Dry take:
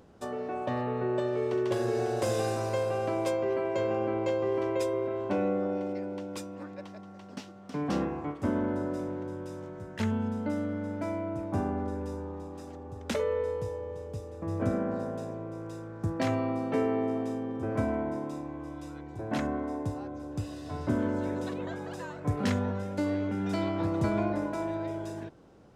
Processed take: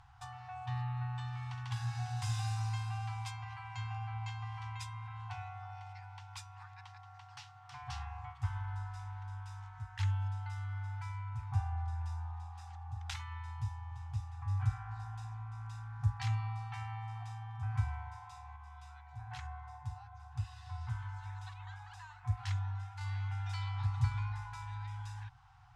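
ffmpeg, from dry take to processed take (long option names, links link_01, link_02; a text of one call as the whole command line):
ffmpeg -i in.wav -filter_complex "[0:a]asettb=1/sr,asplit=3[link_01][link_02][link_03];[link_01]atrim=end=18.564[link_04];[link_02]atrim=start=18.56:end=23.01,asetpts=PTS-STARTPTS,afade=type=in:duration=0.004:curve=qsin,afade=type=out:start_time=4.446:duration=0.004:curve=qsin,flanger=delay=0.8:depth=5.4:regen=-76:speed=1:shape=sinusoidal[link_05];[link_03]atrim=start=23.006[link_06];[link_04][link_05]acrossfade=duration=0.004:curve1=hsin:curve2=qsin[link_07];[link_07][link_06]acrossfade=duration=0.004:curve1=qsin:curve2=hsin,aemphasis=mode=reproduction:type=50fm,afftfilt=real='re*(1-between(b*sr/4096,130,720))':imag='im*(1-between(b*sr/4096,130,720))':win_size=4096:overlap=0.75,acrossover=split=380|3000[link_08][link_09][link_10];[link_09]acompressor=threshold=-58dB:ratio=2[link_11];[link_08][link_11][link_10]amix=inputs=3:normalize=0,volume=2dB" out.wav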